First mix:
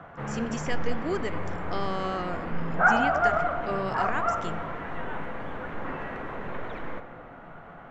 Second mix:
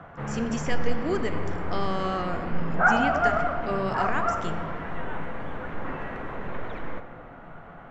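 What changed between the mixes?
speech: send +8.5 dB; master: add bass shelf 140 Hz +4.5 dB

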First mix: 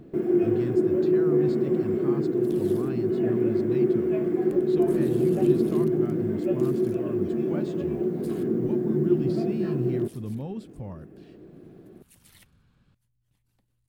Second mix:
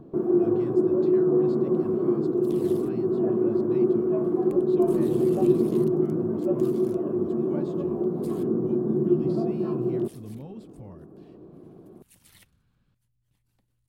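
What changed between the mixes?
speech -6.5 dB; first sound: add resonant high shelf 1.5 kHz -10 dB, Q 3

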